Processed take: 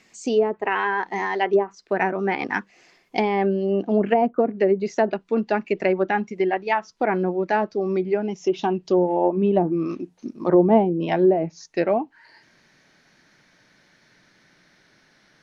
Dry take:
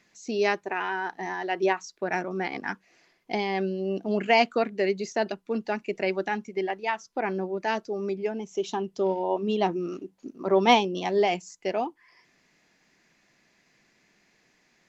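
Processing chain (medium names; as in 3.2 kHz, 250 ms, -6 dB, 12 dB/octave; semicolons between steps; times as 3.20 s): gliding tape speed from 107% -> 86%; low-pass that closes with the level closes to 540 Hz, closed at -19.5 dBFS; trim +7 dB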